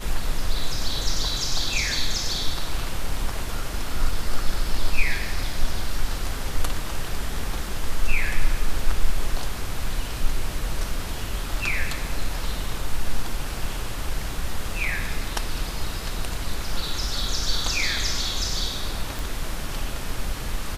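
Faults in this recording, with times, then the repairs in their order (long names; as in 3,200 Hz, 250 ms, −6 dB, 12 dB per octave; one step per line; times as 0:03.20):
0:19.19: click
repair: click removal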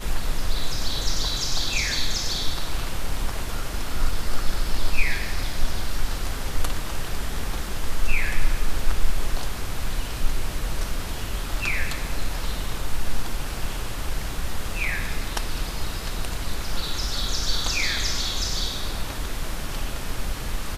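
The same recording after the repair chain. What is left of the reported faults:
none of them is left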